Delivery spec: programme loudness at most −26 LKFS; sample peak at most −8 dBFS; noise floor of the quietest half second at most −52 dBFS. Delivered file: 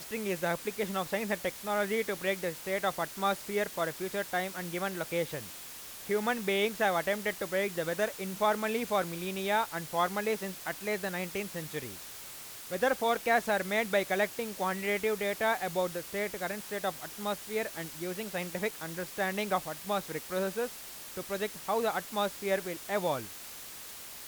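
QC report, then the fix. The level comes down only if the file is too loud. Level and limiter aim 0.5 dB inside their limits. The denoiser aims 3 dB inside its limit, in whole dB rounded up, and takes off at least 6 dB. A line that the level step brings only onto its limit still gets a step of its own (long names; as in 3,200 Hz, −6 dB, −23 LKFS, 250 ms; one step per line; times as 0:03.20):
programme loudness −32.5 LKFS: in spec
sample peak −15.0 dBFS: in spec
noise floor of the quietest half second −45 dBFS: out of spec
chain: broadband denoise 10 dB, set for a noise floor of −45 dBFS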